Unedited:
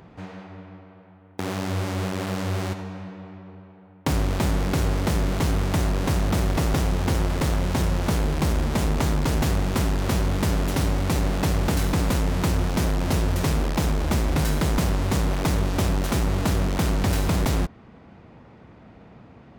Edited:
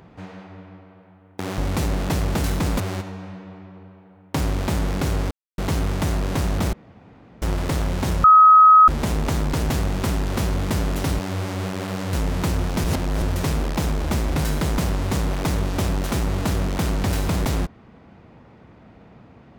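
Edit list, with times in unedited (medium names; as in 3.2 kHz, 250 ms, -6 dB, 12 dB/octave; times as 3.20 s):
1.58–2.52 s: swap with 10.91–12.13 s
5.03–5.30 s: mute
6.45–7.14 s: room tone
7.96–8.60 s: bleep 1.27 kHz -7 dBFS
12.84–13.22 s: reverse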